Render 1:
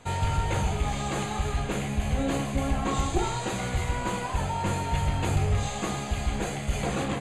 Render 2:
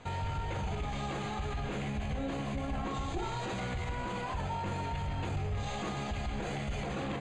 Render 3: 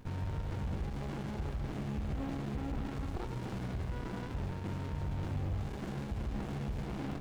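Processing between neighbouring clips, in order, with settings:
low-pass 4.8 kHz 12 dB/octave; peak limiter -28 dBFS, peak gain reduction 11.5 dB
added noise white -68 dBFS; sliding maximum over 65 samples

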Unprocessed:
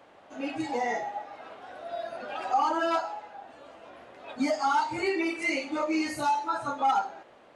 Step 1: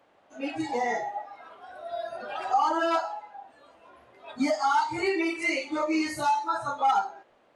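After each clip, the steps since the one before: spectral noise reduction 9 dB; trim +1.5 dB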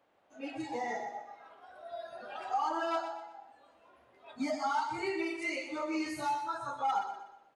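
feedback delay 123 ms, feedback 39%, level -9 dB; trim -8.5 dB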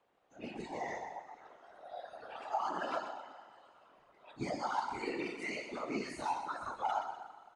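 resampled via 22.05 kHz; Schroeder reverb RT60 3.3 s, combs from 31 ms, DRR 15 dB; whisper effect; trim -4 dB

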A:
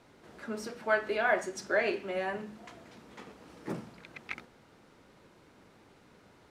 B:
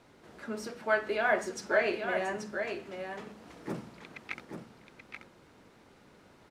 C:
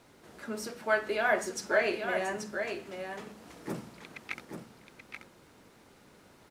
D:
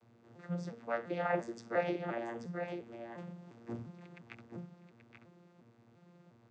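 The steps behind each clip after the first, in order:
delay 832 ms -6.5 dB
treble shelf 7.3 kHz +11 dB
vocoder on a broken chord bare fifth, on A#2, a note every 350 ms; trim -5 dB

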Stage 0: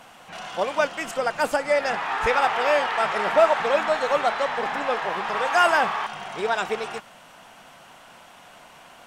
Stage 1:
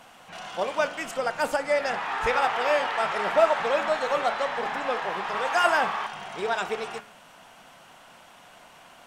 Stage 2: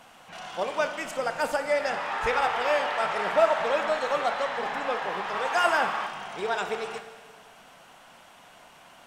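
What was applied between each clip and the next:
de-hum 71.16 Hz, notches 38; trim -2.5 dB
Schroeder reverb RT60 1.7 s, DRR 10 dB; trim -1.5 dB

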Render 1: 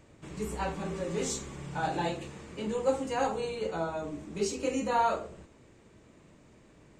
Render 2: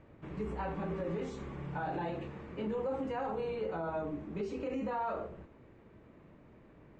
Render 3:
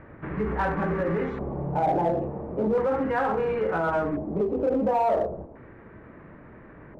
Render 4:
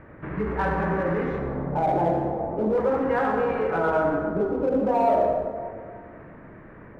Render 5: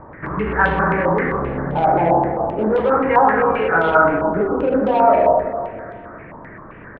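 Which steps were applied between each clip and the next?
peak limiter -28 dBFS, peak gain reduction 11.5 dB; low-pass 2 kHz 12 dB/octave
LFO low-pass square 0.36 Hz 700–1700 Hz; in parallel at -5.5 dB: hard clipper -33 dBFS, distortion -11 dB; on the sum: trim +6.5 dB
reverberation RT60 2.1 s, pre-delay 58 ms, DRR 3 dB
delay 461 ms -22.5 dB; step-sequenced low-pass 7.6 Hz 960–3300 Hz; trim +5 dB

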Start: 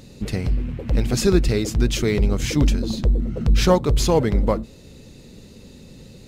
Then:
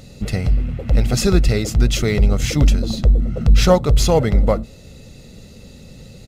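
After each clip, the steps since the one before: comb 1.5 ms, depth 40%; trim +2.5 dB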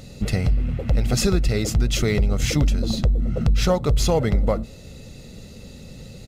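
compression, threshold -15 dBFS, peak gain reduction 8.5 dB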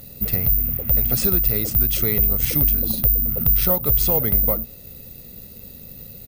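careless resampling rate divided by 3×, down filtered, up zero stuff; trim -4.5 dB

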